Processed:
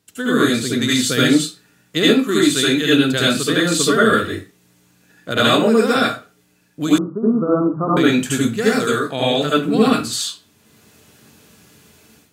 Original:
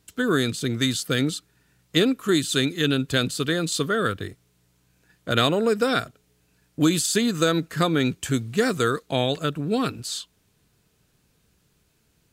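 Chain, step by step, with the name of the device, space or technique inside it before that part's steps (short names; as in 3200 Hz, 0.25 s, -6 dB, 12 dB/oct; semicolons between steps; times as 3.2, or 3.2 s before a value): far laptop microphone (reverb RT60 0.30 s, pre-delay 69 ms, DRR -7 dB; HPF 120 Hz 12 dB/oct; AGC gain up to 12 dB); 6.98–7.97 steep low-pass 1300 Hz 96 dB/oct; gain -1 dB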